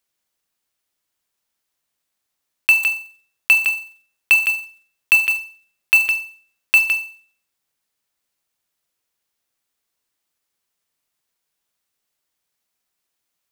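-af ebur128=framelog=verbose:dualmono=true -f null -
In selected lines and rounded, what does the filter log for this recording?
Integrated loudness:
  I:         -13.0 LUFS
  Threshold: -24.4 LUFS
Loudness range:
  LRA:         6.1 LU
  Threshold: -36.1 LUFS
  LRA low:   -20.1 LUFS
  LRA high:  -14.0 LUFS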